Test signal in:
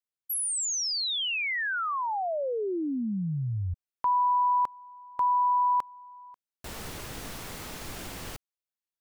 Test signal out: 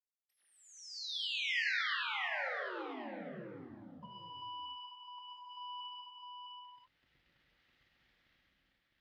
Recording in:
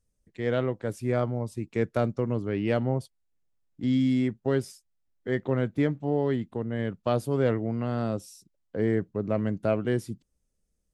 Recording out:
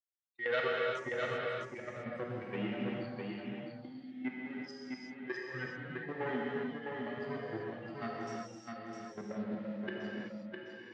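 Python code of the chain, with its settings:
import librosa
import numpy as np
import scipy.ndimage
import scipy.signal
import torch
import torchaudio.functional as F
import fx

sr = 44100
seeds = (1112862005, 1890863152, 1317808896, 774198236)

p1 = fx.bin_expand(x, sr, power=3.0)
p2 = fx.env_lowpass_down(p1, sr, base_hz=660.0, full_db=-22.0)
p3 = fx.over_compress(p2, sr, threshold_db=-36.0, ratio=-1.0)
p4 = fx.leveller(p3, sr, passes=2)
p5 = fx.level_steps(p4, sr, step_db=15)
p6 = fx.cabinet(p5, sr, low_hz=350.0, low_slope=12, high_hz=4300.0, hz=(410.0, 670.0, 1000.0, 1900.0, 3200.0), db=(-9, -5, -7, 8, 3))
p7 = p6 + fx.echo_single(p6, sr, ms=657, db=-4.5, dry=0)
p8 = fx.rev_gated(p7, sr, seeds[0], gate_ms=410, shape='flat', drr_db=-3.5)
y = p8 * 10.0 ** (1.0 / 20.0)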